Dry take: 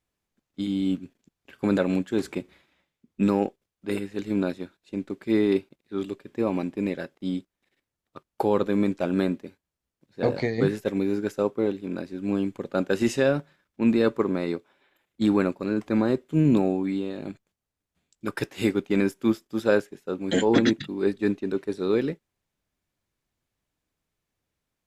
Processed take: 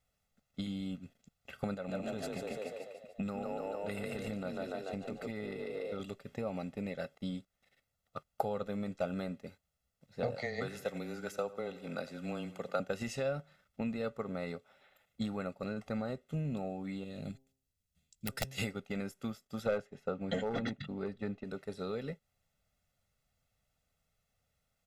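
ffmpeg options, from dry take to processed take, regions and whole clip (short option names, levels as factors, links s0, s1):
-filter_complex "[0:a]asettb=1/sr,asplit=3[s0][s1][s2];[s0]atrim=end=1.744[s3];[s1]atrim=start=1.74:end=6,asetpts=PTS-STARTPTS,afade=t=in:d=0.004:c=qsin,afade=t=out:st=4.256:d=0.004:c=qsin,asplit=8[s4][s5][s6][s7][s8][s9][s10][s11];[s5]adelay=145,afreqshift=35,volume=0.668[s12];[s6]adelay=290,afreqshift=70,volume=0.335[s13];[s7]adelay=435,afreqshift=105,volume=0.168[s14];[s8]adelay=580,afreqshift=140,volume=0.0832[s15];[s9]adelay=725,afreqshift=175,volume=0.0417[s16];[s10]adelay=870,afreqshift=210,volume=0.0209[s17];[s11]adelay=1015,afreqshift=245,volume=0.0105[s18];[s4][s12][s13][s14][s15][s16][s17][s18]amix=inputs=8:normalize=0,atrim=end_sample=187866,acompressor=threshold=0.0398:ratio=4:attack=3.2:release=140:knee=1:detection=peak[s19];[s2]atrim=start=5.996[s20];[s3][s19]acrossfade=d=0.004:c1=hsin:c2=qsin[s21];[s21][s20]acrossfade=d=0.004:c1=qsin:c2=hsin,asettb=1/sr,asplit=3[s22][s23][s24];[s22]atrim=end=10.354[s25];[s23]atrim=start=10.35:end=12.8,asetpts=PTS-STARTPTS,afade=t=in:d=0.004:c=qsin,afade=t=out:st=2.446:d=0.004:c=qsin,highpass=f=500:p=1,afreqshift=-14,aecho=1:1:88|176|264|352:0.119|0.0606|0.0309|0.0158,atrim=end_sample=108045[s26];[s24]atrim=start=12.796[s27];[s25][s26]acrossfade=d=0.004:c1=hsin:c2=qsin[s28];[s28][s27]acrossfade=d=0.004:c1=qsin:c2=hsin,asettb=1/sr,asplit=3[s29][s30][s31];[s29]atrim=end=17.044[s32];[s30]atrim=start=17.04:end=18.58,asetpts=PTS-STARTPTS,afade=t=in:d=0.004:c=qsin,afade=t=out:st=1.536:d=0.004:c=qsin,equalizer=f=930:w=0.56:g=-14,bandreject=f=132.8:t=h:w=4,bandreject=f=265.6:t=h:w=4,bandreject=f=398.4:t=h:w=4,bandreject=f=531.2:t=h:w=4,bandreject=f=664:t=h:w=4,bandreject=f=796.8:t=h:w=4,bandreject=f=929.6:t=h:w=4,aeval=exprs='(mod(11.9*val(0)+1,2)-1)/11.9':c=same[s33];[s31]atrim=start=18.576[s34];[s32][s33]acrossfade=d=0.004:c1=hsin:c2=qsin[s35];[s35][s34]acrossfade=d=0.004:c1=qsin:c2=hsin,asettb=1/sr,asplit=3[s36][s37][s38];[s36]atrim=end=19.664[s39];[s37]atrim=start=19.66:end=21.44,asetpts=PTS-STARTPTS,afade=t=in:d=0.004:c=qsin,afade=t=out:st=1.776:d=0.004:c=qsin,aemphasis=mode=reproduction:type=75kf,acontrast=72,asoftclip=type=hard:threshold=0.398[s40];[s38]atrim=start=21.436[s41];[s39][s40]acrossfade=d=0.004:c1=hsin:c2=qsin[s42];[s42][s41]acrossfade=d=0.004:c1=qsin:c2=hsin,acompressor=threshold=0.0224:ratio=5,aecho=1:1:1.5:0.83,volume=0.891"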